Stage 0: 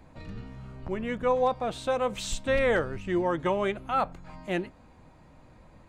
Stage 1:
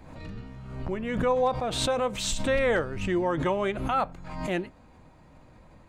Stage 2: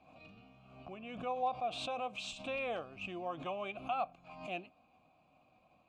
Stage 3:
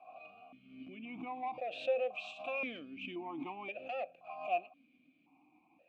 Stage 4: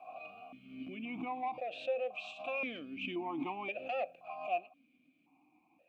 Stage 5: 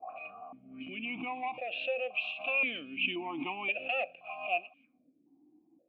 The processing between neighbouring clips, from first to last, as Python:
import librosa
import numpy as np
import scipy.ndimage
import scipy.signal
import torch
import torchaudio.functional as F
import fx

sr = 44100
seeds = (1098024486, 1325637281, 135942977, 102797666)

y1 = fx.pre_swell(x, sr, db_per_s=49.0)
y2 = fx.vowel_filter(y1, sr, vowel='a')
y2 = fx.band_shelf(y2, sr, hz=820.0, db=-11.0, octaves=2.7)
y2 = F.gain(torch.from_numpy(y2), 8.5).numpy()
y3 = 10.0 ** (-29.5 / 20.0) * np.tanh(y2 / 10.0 ** (-29.5 / 20.0))
y3 = fx.vowel_held(y3, sr, hz=1.9)
y3 = F.gain(torch.from_numpy(y3), 12.5).numpy()
y4 = fx.rider(y3, sr, range_db=4, speed_s=0.5)
y4 = F.gain(torch.from_numpy(y4), 1.0).numpy()
y5 = fx.envelope_lowpass(y4, sr, base_hz=320.0, top_hz=2800.0, q=4.0, full_db=-42.5, direction='up')